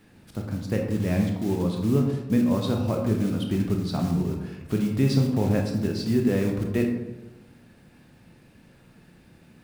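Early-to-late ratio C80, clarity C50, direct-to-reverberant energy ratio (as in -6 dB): 7.5 dB, 5.0 dB, 1.5 dB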